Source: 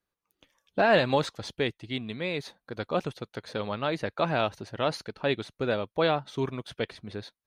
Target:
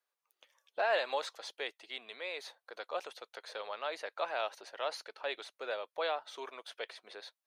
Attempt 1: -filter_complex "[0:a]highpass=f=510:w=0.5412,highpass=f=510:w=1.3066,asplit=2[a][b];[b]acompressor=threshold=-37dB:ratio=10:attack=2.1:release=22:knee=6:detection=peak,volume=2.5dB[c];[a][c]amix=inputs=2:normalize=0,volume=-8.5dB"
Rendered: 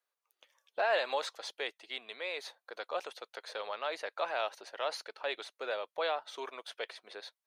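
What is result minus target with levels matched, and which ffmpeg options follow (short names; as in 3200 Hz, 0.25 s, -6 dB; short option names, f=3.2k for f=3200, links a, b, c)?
compressor: peak gain reduction -8 dB
-filter_complex "[0:a]highpass=f=510:w=0.5412,highpass=f=510:w=1.3066,asplit=2[a][b];[b]acompressor=threshold=-46dB:ratio=10:attack=2.1:release=22:knee=6:detection=peak,volume=2.5dB[c];[a][c]amix=inputs=2:normalize=0,volume=-8.5dB"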